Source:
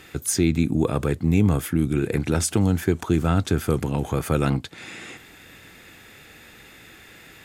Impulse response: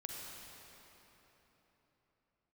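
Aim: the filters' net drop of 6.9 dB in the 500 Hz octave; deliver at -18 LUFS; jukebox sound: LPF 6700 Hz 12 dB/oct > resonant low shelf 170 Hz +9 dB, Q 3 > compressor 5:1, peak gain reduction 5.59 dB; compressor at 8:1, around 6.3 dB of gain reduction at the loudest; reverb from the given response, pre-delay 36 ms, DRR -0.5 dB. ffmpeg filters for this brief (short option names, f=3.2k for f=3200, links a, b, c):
-filter_complex "[0:a]equalizer=f=500:t=o:g=-7,acompressor=threshold=-22dB:ratio=8,asplit=2[a][b];[1:a]atrim=start_sample=2205,adelay=36[c];[b][c]afir=irnorm=-1:irlink=0,volume=1.5dB[d];[a][d]amix=inputs=2:normalize=0,lowpass=6.7k,lowshelf=f=170:t=q:w=3:g=9,acompressor=threshold=-13dB:ratio=5,volume=1dB"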